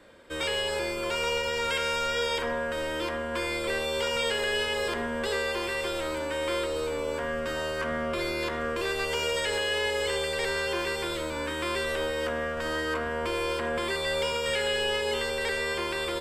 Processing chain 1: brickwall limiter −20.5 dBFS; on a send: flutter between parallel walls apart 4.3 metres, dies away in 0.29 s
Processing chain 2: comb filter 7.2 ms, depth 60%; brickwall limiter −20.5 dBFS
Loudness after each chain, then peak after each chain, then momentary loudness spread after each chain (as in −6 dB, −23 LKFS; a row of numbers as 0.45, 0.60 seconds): −29.0, −29.0 LKFS; −16.5, −20.5 dBFS; 3, 2 LU